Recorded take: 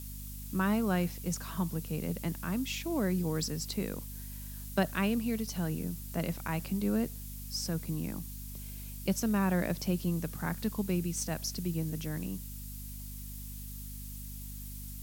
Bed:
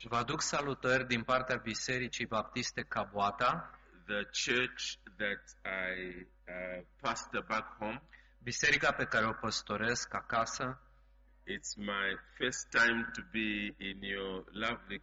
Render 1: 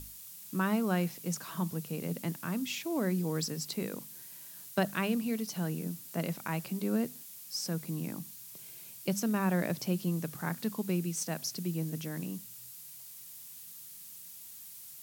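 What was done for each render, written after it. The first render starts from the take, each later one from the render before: hum notches 50/100/150/200/250 Hz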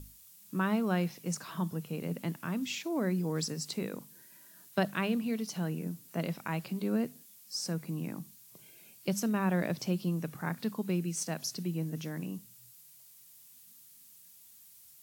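noise print and reduce 8 dB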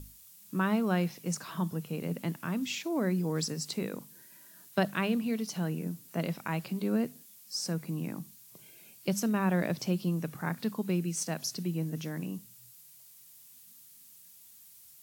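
trim +1.5 dB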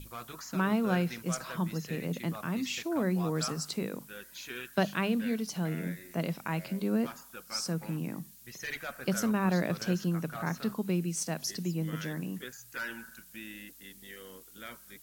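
add bed -10 dB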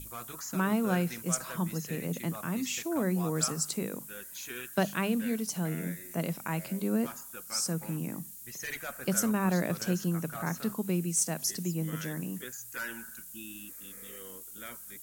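13.33–14.14 s: spectral replace 390–2500 Hz both; resonant high shelf 6 kHz +7.5 dB, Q 1.5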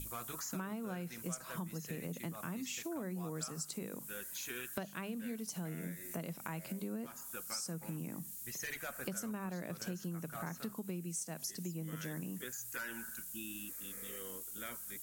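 compression 6:1, threshold -39 dBFS, peak gain reduction 16.5 dB

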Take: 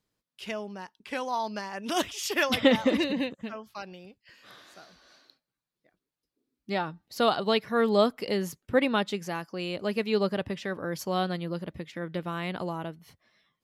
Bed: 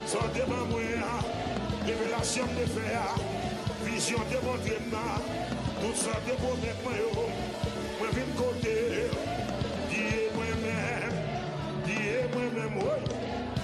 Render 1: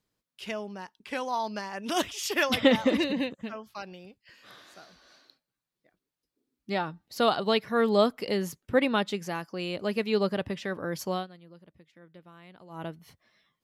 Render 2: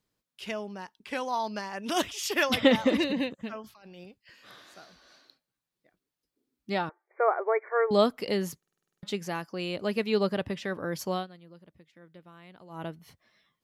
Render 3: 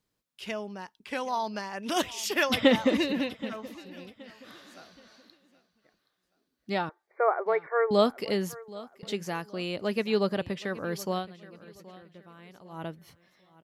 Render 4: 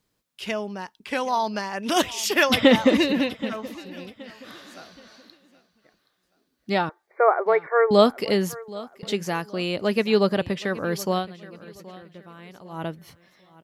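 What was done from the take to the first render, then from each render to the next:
11.11–12.85 s: dip -18.5 dB, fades 0.16 s
3.64–4.04 s: compressor with a negative ratio -50 dBFS; 6.89–7.91 s: brick-wall FIR band-pass 340–2400 Hz; 8.58 s: stutter in place 0.05 s, 9 plays
feedback delay 774 ms, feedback 35%, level -19 dB
trim +6.5 dB; peak limiter -3 dBFS, peak gain reduction 2 dB

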